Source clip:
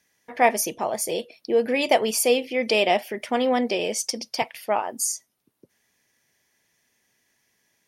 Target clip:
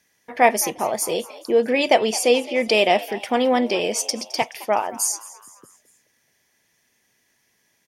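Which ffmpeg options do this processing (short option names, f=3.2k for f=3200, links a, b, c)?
-filter_complex "[0:a]asettb=1/sr,asplit=3[a][b][c];[a]atrim=end=1.514[d];[b]atrim=start=1.51:end=2.68,asetpts=PTS-STARTPTS,afade=t=in:d=0.004:c=qsin,afade=t=out:st=1.166:d=0.004:c=qsin,highpass=100,lowpass=8k[e];[c]atrim=start=2.676[f];[d][e]acrossfade=d=0.004:c1=hsin:c2=qsin[g];[g][f]acrossfade=d=0.004:c1=qsin:c2=hsin,asplit=2[h][i];[i]asplit=4[j][k][l][m];[j]adelay=214,afreqshift=93,volume=-18.5dB[n];[k]adelay=428,afreqshift=186,volume=-24.7dB[o];[l]adelay=642,afreqshift=279,volume=-30.9dB[p];[m]adelay=856,afreqshift=372,volume=-37.1dB[q];[n][o][p][q]amix=inputs=4:normalize=0[r];[h][r]amix=inputs=2:normalize=0,volume=3dB"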